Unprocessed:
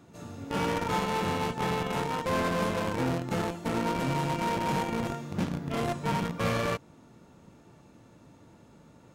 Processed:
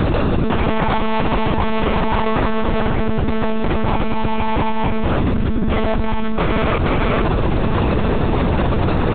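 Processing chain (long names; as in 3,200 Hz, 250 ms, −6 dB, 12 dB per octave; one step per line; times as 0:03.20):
dynamic equaliser 190 Hz, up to +6 dB, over −45 dBFS, Q 2
single-tap delay 457 ms −22.5 dB
one-pitch LPC vocoder at 8 kHz 220 Hz
envelope flattener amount 100%
level +6 dB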